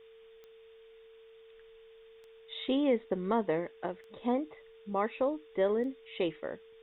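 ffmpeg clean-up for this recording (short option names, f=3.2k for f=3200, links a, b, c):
-af "adeclick=t=4,bandreject=f=450:w=30,afftdn=nr=22:nf=-56"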